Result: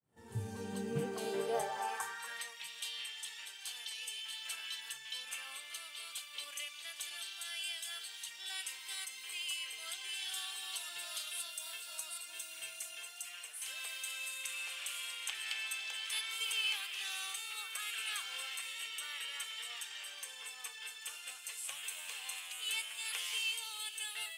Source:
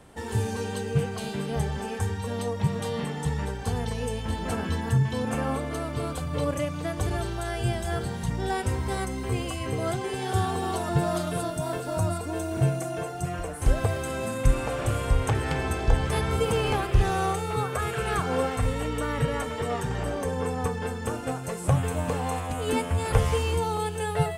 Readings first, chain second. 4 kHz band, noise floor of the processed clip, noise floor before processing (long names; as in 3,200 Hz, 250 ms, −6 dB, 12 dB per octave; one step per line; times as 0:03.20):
+1.0 dB, −51 dBFS, −34 dBFS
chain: fade in at the beginning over 1.57 s
high-shelf EQ 11,000 Hz +9 dB
high-pass filter sweep 120 Hz → 2,900 Hz, 0:00.52–0:02.68
echo ahead of the sound 46 ms −19 dB
level −6 dB